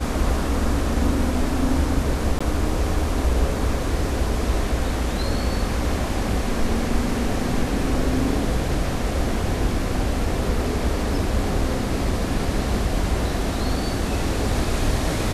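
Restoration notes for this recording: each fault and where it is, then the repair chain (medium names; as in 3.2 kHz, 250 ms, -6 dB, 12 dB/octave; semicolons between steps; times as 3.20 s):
2.39–2.40 s: dropout 15 ms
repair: interpolate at 2.39 s, 15 ms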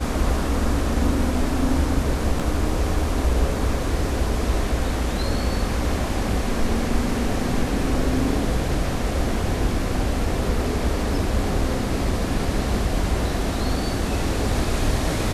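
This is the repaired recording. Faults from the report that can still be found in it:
nothing left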